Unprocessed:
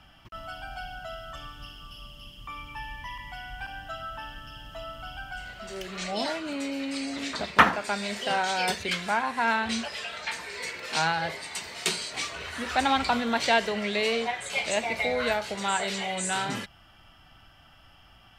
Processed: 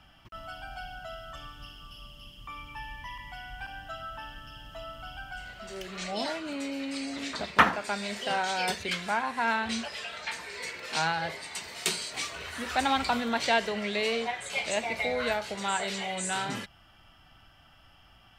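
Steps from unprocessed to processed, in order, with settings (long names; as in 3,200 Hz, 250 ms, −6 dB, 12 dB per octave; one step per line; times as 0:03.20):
0:11.68–0:13.29: high-shelf EQ 12,000 Hz +10 dB
level −2.5 dB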